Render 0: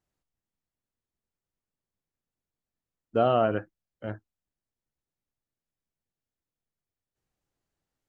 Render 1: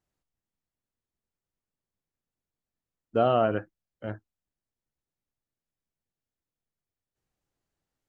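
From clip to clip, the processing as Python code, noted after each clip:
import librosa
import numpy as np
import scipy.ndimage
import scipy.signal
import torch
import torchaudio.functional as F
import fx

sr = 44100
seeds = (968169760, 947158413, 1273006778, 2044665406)

y = x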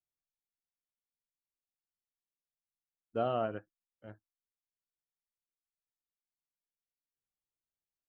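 y = fx.upward_expand(x, sr, threshold_db=-43.0, expansion=1.5)
y = F.gain(torch.from_numpy(y), -8.5).numpy()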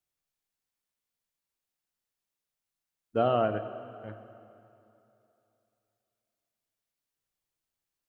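y = fx.rev_plate(x, sr, seeds[0], rt60_s=2.9, hf_ratio=0.8, predelay_ms=0, drr_db=10.0)
y = F.gain(torch.from_numpy(y), 6.5).numpy()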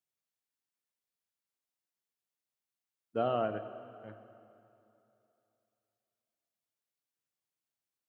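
y = scipy.signal.sosfilt(scipy.signal.butter(2, 110.0, 'highpass', fs=sr, output='sos'), x)
y = F.gain(torch.from_numpy(y), -5.5).numpy()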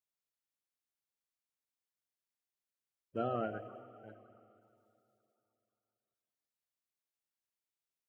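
y = fx.spec_quant(x, sr, step_db=30)
y = F.gain(torch.from_numpy(y), -4.0).numpy()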